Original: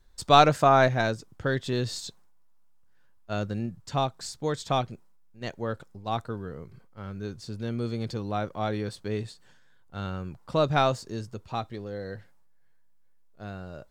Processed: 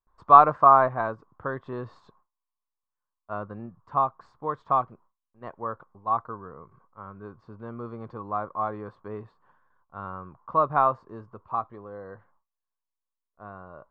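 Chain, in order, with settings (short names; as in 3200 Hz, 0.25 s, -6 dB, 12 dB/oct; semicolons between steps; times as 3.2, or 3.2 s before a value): gate with hold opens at -51 dBFS; synth low-pass 1100 Hz, resonance Q 7.8; low shelf 240 Hz -6.5 dB; gain -4.5 dB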